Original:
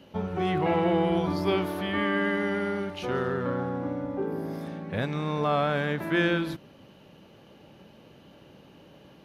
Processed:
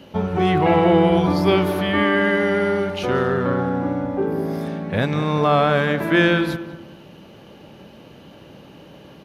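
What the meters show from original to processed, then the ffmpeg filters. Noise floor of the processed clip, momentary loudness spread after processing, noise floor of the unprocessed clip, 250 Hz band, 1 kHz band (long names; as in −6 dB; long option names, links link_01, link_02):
−45 dBFS, 9 LU, −54 dBFS, +8.5 dB, +9.0 dB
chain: -filter_complex "[0:a]asplit=2[link_01][link_02];[link_02]adelay=196,lowpass=frequency=1400:poles=1,volume=-11dB,asplit=2[link_03][link_04];[link_04]adelay=196,lowpass=frequency=1400:poles=1,volume=0.37,asplit=2[link_05][link_06];[link_06]adelay=196,lowpass=frequency=1400:poles=1,volume=0.37,asplit=2[link_07][link_08];[link_08]adelay=196,lowpass=frequency=1400:poles=1,volume=0.37[link_09];[link_01][link_03][link_05][link_07][link_09]amix=inputs=5:normalize=0,volume=8.5dB"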